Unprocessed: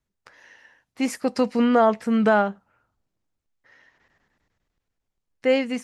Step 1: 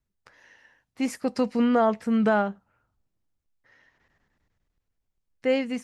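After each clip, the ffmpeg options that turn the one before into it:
-af "lowshelf=f=170:g=7,volume=-4.5dB"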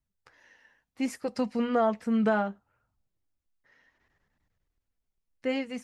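-af "flanger=delay=0.9:depth=4.1:regen=-51:speed=0.68:shape=triangular"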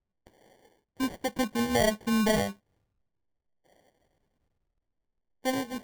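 -af "acrusher=samples=34:mix=1:aa=0.000001"

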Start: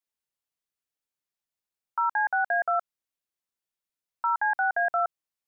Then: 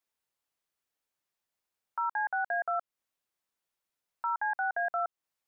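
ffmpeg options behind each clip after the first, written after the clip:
-af "equalizer=f=910:w=0.44:g=4.5,alimiter=level_in=1.5dB:limit=-24dB:level=0:latency=1:release=225,volume=-1.5dB,volume=1.5dB"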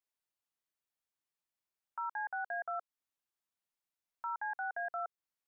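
-af "equalizer=f=480:t=o:w=0.37:g=-4,volume=-7dB"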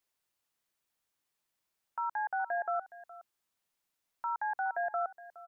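-filter_complex "[0:a]acrossover=split=1000[a][b];[b]alimiter=level_in=20.5dB:limit=-24dB:level=0:latency=1,volume=-20.5dB[c];[a][c]amix=inputs=2:normalize=0,aecho=1:1:417:0.133,volume=8dB"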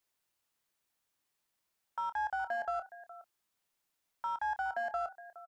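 -filter_complex "[0:a]asplit=2[a][b];[b]asoftclip=type=hard:threshold=-39.5dB,volume=-8dB[c];[a][c]amix=inputs=2:normalize=0,asplit=2[d][e];[e]adelay=28,volume=-13dB[f];[d][f]amix=inputs=2:normalize=0,volume=-2dB"

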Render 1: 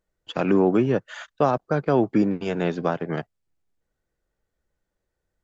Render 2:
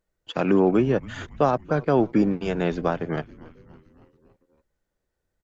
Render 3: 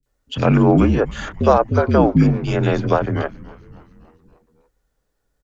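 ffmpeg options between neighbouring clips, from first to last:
-filter_complex "[0:a]asplit=6[a][b][c][d][e][f];[b]adelay=280,afreqshift=-140,volume=-20.5dB[g];[c]adelay=560,afreqshift=-280,volume=-24.7dB[h];[d]adelay=840,afreqshift=-420,volume=-28.8dB[i];[e]adelay=1120,afreqshift=-560,volume=-33dB[j];[f]adelay=1400,afreqshift=-700,volume=-37.1dB[k];[a][g][h][i][j][k]amix=inputs=6:normalize=0"
-filter_complex "[0:a]bandreject=f=400:w=12,afreqshift=-53,acrossover=split=300|2300[a][b][c];[c]adelay=30[d];[b]adelay=60[e];[a][e][d]amix=inputs=3:normalize=0,volume=8.5dB"

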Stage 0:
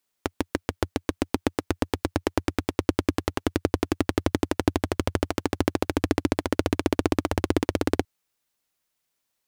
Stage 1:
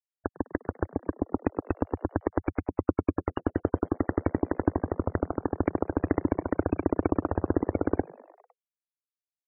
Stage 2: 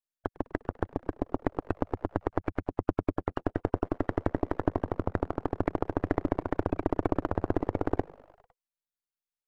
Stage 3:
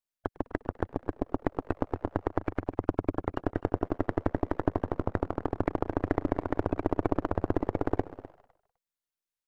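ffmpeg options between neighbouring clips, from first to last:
-filter_complex "[0:a]afftfilt=real='re*gte(hypot(re,im),0.0708)':imag='im*gte(hypot(re,im),0.0708)':win_size=1024:overlap=0.75,asplit=6[a][b][c][d][e][f];[b]adelay=101,afreqshift=83,volume=-22dB[g];[c]adelay=202,afreqshift=166,volume=-25.7dB[h];[d]adelay=303,afreqshift=249,volume=-29.5dB[i];[e]adelay=404,afreqshift=332,volume=-33.2dB[j];[f]adelay=505,afreqshift=415,volume=-37dB[k];[a][g][h][i][j][k]amix=inputs=6:normalize=0,volume=-2dB"
-af "aeval=exprs='if(lt(val(0),0),0.251*val(0),val(0))':c=same"
-af "aecho=1:1:254:0.15"

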